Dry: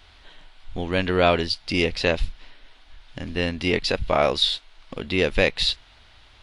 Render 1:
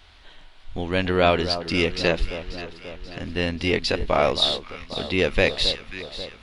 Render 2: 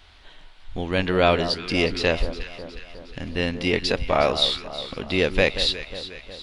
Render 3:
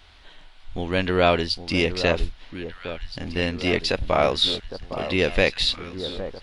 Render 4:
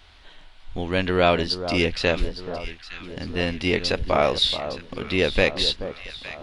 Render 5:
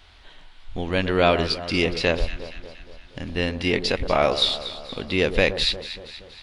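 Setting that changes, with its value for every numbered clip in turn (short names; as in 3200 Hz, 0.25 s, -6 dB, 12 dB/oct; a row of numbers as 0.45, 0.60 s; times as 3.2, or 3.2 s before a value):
echo with dull and thin repeats by turns, time: 0.268, 0.181, 0.81, 0.43, 0.118 s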